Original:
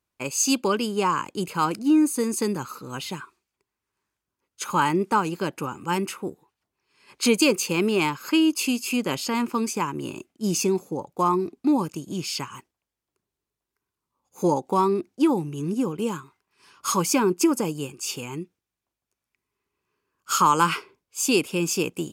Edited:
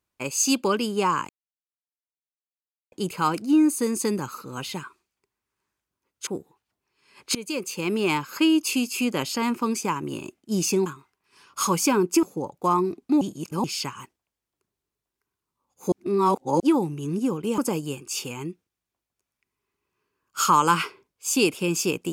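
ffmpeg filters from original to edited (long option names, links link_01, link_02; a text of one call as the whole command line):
ffmpeg -i in.wav -filter_complex "[0:a]asplit=11[link_01][link_02][link_03][link_04][link_05][link_06][link_07][link_08][link_09][link_10][link_11];[link_01]atrim=end=1.29,asetpts=PTS-STARTPTS,afade=type=out:start_time=1.286:duration=0.004:curve=hsin,apad=pad_dur=1.63[link_12];[link_02]atrim=start=1.29:end=4.642,asetpts=PTS-STARTPTS,afade=type=in:duration=0.004:curve=hsin[link_13];[link_03]atrim=start=6.188:end=7.27,asetpts=PTS-STARTPTS,afade=type=out:start_time=1.078:duration=0.004:curve=hsin:silence=0.0944061[link_14];[link_04]atrim=start=7.27:end=10.782,asetpts=PTS-STARTPTS,afade=type=in:duration=0.82:silence=0.0944061[link_15];[link_05]atrim=start=16.128:end=17.502[link_16];[link_06]atrim=start=10.778:end=11.762[link_17];[link_07]atrim=start=11.758:end=12.192,asetpts=PTS-STARTPTS,areverse[link_18];[link_08]atrim=start=12.188:end=14.472[link_19];[link_09]atrim=start=14.468:end=15.152,asetpts=PTS-STARTPTS,areverse[link_20];[link_10]atrim=start=15.148:end=16.132[link_21];[link_11]atrim=start=17.498[link_22];[link_12][link_13]concat=n=2:v=0:a=1[link_23];[link_14][link_15]concat=n=2:v=0:a=1[link_24];[link_23][link_24]acrossfade=duration=0.004:curve1=hsin:curve2=hsin[link_25];[link_25][link_16]acrossfade=duration=0.004:curve1=hsin:curve2=hsin[link_26];[link_26][link_17]acrossfade=duration=0.004:curve1=hsin:curve2=hsin[link_27];[link_27][link_18]acrossfade=duration=0.004:curve1=hsin:curve2=hsin[link_28];[link_28][link_19]acrossfade=duration=0.004:curve1=hsin:curve2=hsin[link_29];[link_29][link_20]acrossfade=duration=0.004:curve1=hsin:curve2=hsin[link_30];[link_30][link_21]acrossfade=duration=0.004:curve1=hsin:curve2=hsin[link_31];[link_31][link_22]acrossfade=duration=0.004:curve1=hsin:curve2=hsin" out.wav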